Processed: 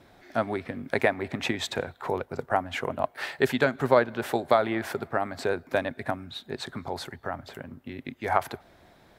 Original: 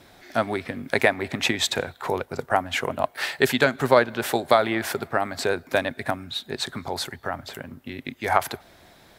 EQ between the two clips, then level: high shelf 2500 Hz -9 dB; -2.5 dB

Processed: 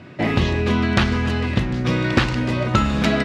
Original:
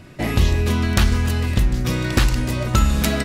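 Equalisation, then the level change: BPF 120–3500 Hz; +3.5 dB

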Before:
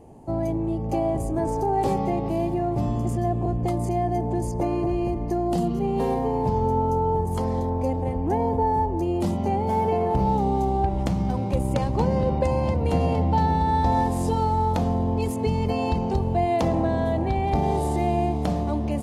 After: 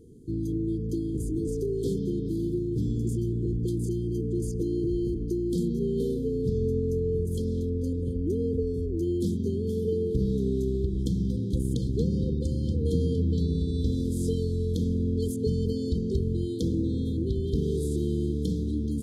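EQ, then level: brick-wall FIR band-stop 500–3100 Hz; -2.5 dB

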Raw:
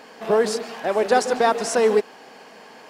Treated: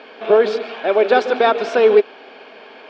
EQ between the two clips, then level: speaker cabinet 230–4300 Hz, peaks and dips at 270 Hz +5 dB, 400 Hz +8 dB, 620 Hz +6 dB, 1400 Hz +6 dB, 2300 Hz +10 dB, 3400 Hz +8 dB; notch 2000 Hz, Q 9.8; 0.0 dB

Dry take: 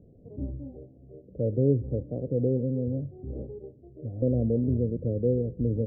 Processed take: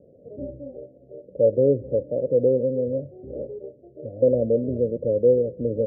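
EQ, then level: HPF 190 Hz 6 dB/oct; synth low-pass 570 Hz, resonance Q 6.2; 0.0 dB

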